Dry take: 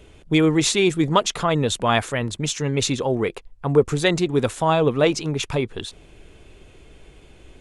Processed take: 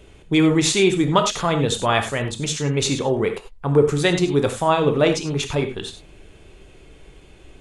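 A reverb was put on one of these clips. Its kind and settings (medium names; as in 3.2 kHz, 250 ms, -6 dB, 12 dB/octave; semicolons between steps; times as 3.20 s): gated-style reverb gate 120 ms flat, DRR 5.5 dB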